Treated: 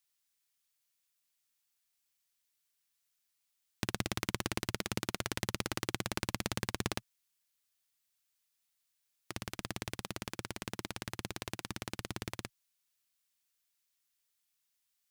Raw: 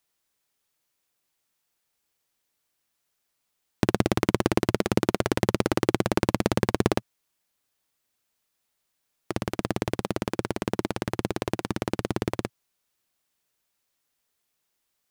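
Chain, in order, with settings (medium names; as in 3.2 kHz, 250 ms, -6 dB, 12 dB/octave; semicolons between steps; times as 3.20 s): amplifier tone stack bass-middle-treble 5-5-5; trim +3 dB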